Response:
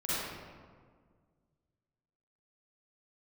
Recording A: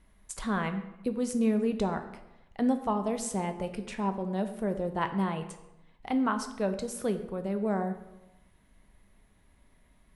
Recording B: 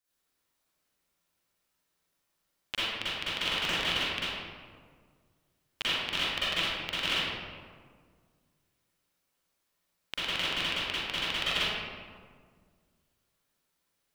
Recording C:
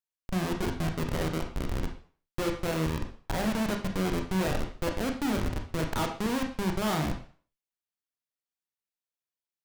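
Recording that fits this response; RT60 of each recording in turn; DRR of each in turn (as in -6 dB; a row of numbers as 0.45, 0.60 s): B; 0.95, 1.8, 0.45 s; 7.0, -12.0, 3.0 dB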